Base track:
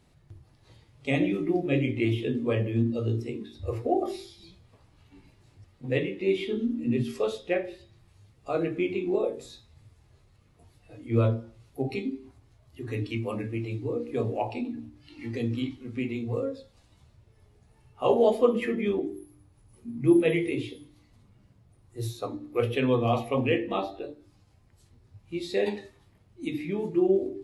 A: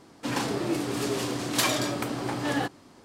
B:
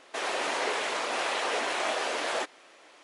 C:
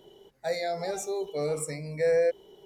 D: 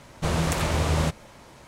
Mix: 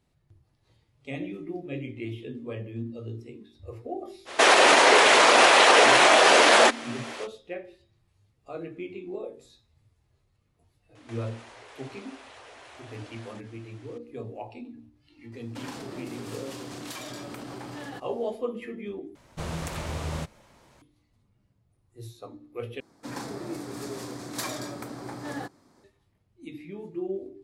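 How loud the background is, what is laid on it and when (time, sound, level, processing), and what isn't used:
base track -9.5 dB
4.25 add B -6 dB, fades 0.05 s + maximiser +22 dB
10.95 add B -3 dB + compressor 12:1, threshold -42 dBFS
15.32 add A -5 dB + compressor, threshold -30 dBFS
19.15 replace with D -9 dB
22.8 replace with A -7.5 dB + bell 2900 Hz -9.5 dB 0.48 oct
not used: C

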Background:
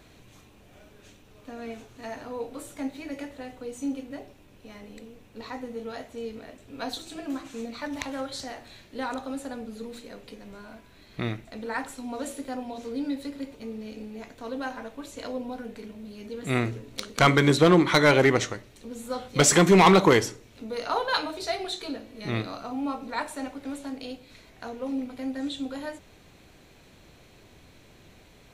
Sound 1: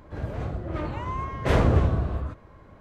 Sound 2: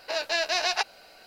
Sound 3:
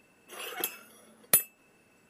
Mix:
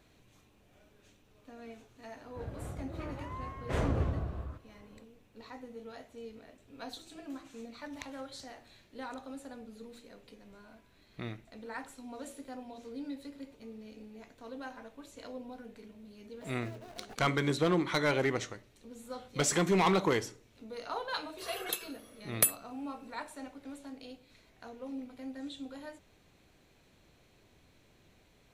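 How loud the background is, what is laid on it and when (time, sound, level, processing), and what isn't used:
background -10.5 dB
2.24 add 1 -11 dB
16.32 add 2 -14.5 dB + median filter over 41 samples
21.09 add 3 -3 dB + comb 1.8 ms, depth 37%

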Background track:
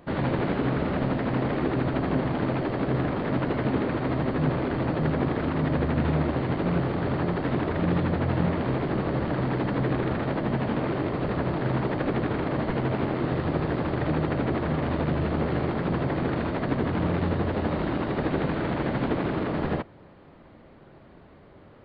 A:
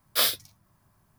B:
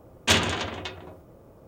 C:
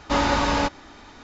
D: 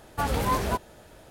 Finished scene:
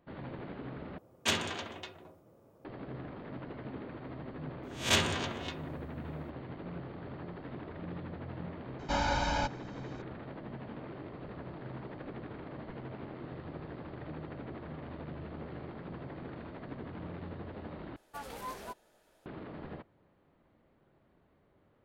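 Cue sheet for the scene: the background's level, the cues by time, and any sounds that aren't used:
background track -17.5 dB
0.98 replace with B -9.5 dB + HPF 110 Hz
4.63 add B -8 dB + spectral swells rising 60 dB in 0.34 s
8.79 add C -12.5 dB + comb 1.3 ms, depth 93%
17.96 replace with D -15 dB + bell 77 Hz -14.5 dB 2.1 oct
not used: A

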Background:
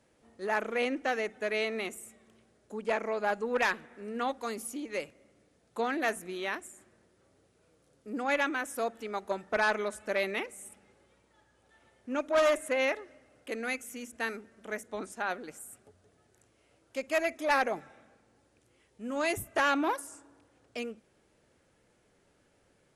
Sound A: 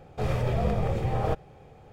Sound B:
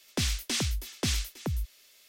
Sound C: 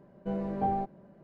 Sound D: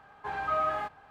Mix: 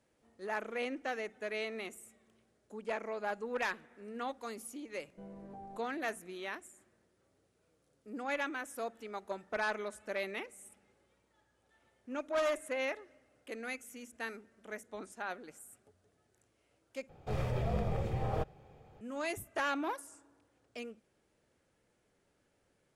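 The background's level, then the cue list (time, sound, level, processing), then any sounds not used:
background -7 dB
4.92 add C -13.5 dB + limiter -28.5 dBFS
17.09 replace with A -7.5 dB
not used: B, D

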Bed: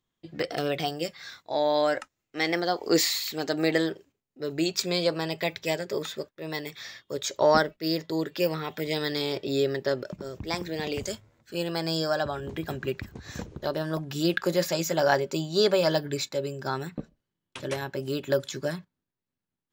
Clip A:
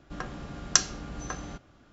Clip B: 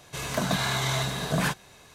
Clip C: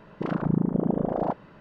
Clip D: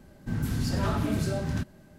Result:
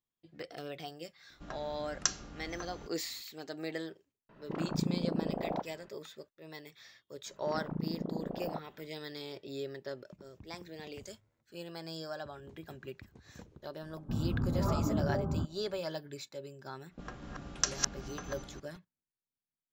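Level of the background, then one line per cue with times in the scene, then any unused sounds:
bed -14.5 dB
1.3 add A -9 dB
4.29 add C -9 dB
7.26 add C -13 dB
13.82 add D -3 dB + elliptic low-pass 1300 Hz
16.88 add A -9 dB, fades 0.05 s + reverse delay 0.172 s, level -1 dB
not used: B

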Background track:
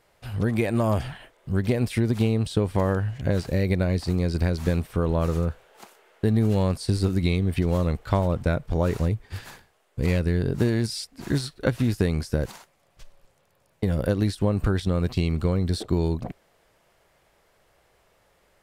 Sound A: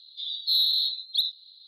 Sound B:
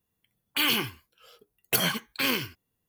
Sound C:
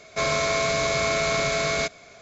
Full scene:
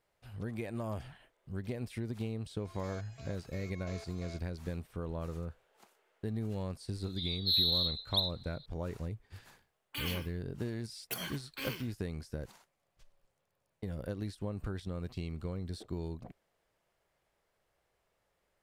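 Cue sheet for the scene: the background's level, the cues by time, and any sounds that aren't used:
background track -15.5 dB
2.49 add C -17.5 dB + stepped resonator 5.8 Hz 61–1300 Hz
6.99 add A -6 dB
9.38 add B -14.5 dB

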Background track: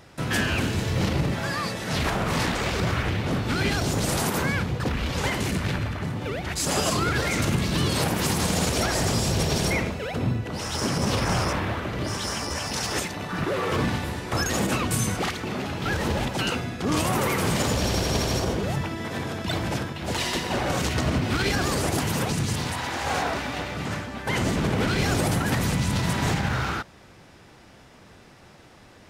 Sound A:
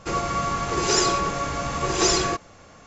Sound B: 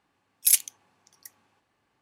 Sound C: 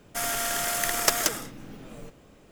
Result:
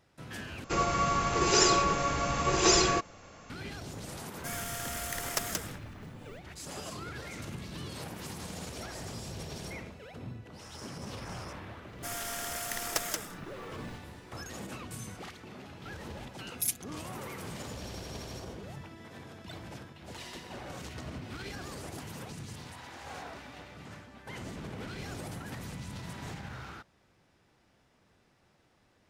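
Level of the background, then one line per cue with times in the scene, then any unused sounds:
background track -17.5 dB
0.64 replace with A -3 dB + bell 2600 Hz +2.5 dB 0.32 oct
4.29 add C -10 dB
11.88 add C -9.5 dB
16.15 add B -14.5 dB + comb 6.2 ms, depth 91%

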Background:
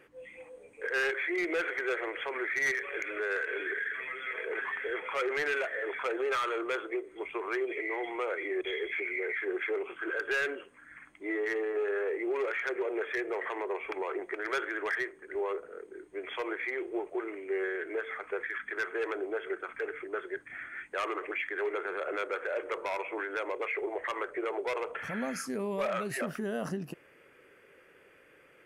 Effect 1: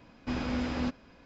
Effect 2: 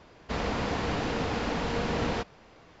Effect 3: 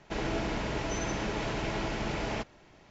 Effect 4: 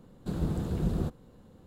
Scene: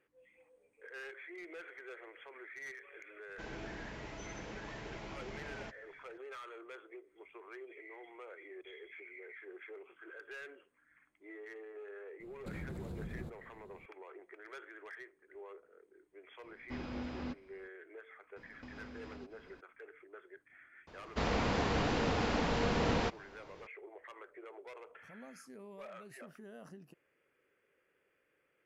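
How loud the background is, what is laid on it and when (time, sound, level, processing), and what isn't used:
background -17.5 dB
3.28 add 3 -14 dB
12.2 add 4 -6.5 dB + compressor, threshold -33 dBFS
16.43 add 1 -10 dB + air absorption 60 m
18.36 add 1 -4.5 dB + compressor 8:1, threshold -43 dBFS
20.87 add 2 -2.5 dB

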